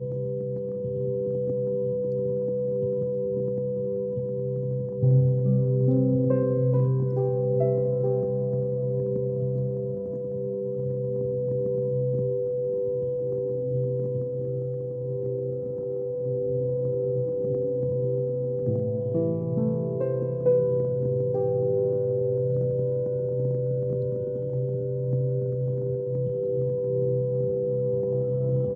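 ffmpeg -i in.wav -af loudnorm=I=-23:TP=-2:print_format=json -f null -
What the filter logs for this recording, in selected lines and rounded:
"input_i" : "-26.6",
"input_tp" : "-11.3",
"input_lra" : "4.3",
"input_thresh" : "-36.6",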